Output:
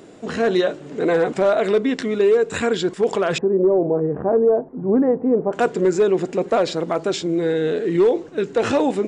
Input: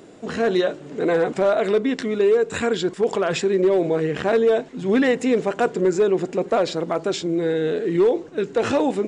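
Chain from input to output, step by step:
0:03.38–0:05.53: low-pass filter 1,000 Hz 24 dB per octave
level +1.5 dB

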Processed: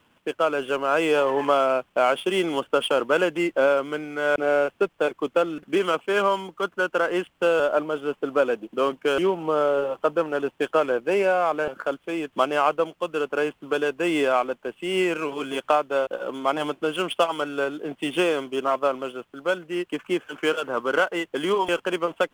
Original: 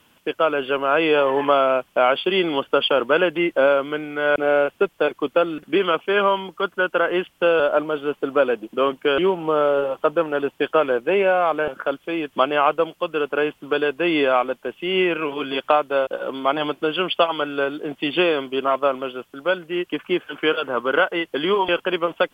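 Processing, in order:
running median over 9 samples
level −3 dB

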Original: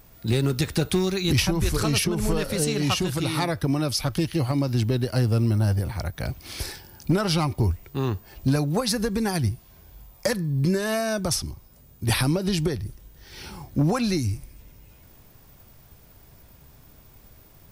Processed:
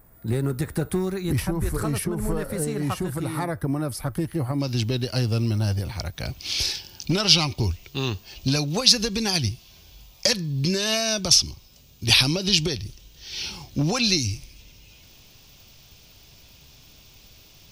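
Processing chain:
flat-topped bell 4,000 Hz −11 dB, from 0:04.59 +8 dB, from 0:06.38 +14.5 dB
level −2 dB

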